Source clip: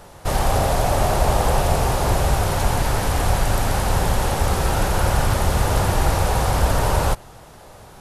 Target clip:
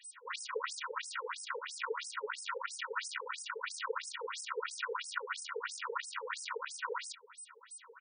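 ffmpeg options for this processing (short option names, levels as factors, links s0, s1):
-af "aemphasis=mode=reproduction:type=75kf,aecho=1:1:2.1:0.9,acompressor=threshold=0.126:ratio=3,aeval=exprs='0.841*(cos(1*acos(clip(val(0)/0.841,-1,1)))-cos(1*PI/2))+0.188*(cos(4*acos(clip(val(0)/0.841,-1,1)))-cos(4*PI/2))+0.211*(cos(6*acos(clip(val(0)/0.841,-1,1)))-cos(6*PI/2))':c=same,asuperstop=centerf=700:order=8:qfactor=1.1,aeval=exprs='val(0)+0.00501*sin(2*PI*8100*n/s)':c=same,afftfilt=real='re*between(b*sr/1024,580*pow(7100/580,0.5+0.5*sin(2*PI*3*pts/sr))/1.41,580*pow(7100/580,0.5+0.5*sin(2*PI*3*pts/sr))*1.41)':imag='im*between(b*sr/1024,580*pow(7100/580,0.5+0.5*sin(2*PI*3*pts/sr))/1.41,580*pow(7100/580,0.5+0.5*sin(2*PI*3*pts/sr))*1.41)':win_size=1024:overlap=0.75,volume=1.12"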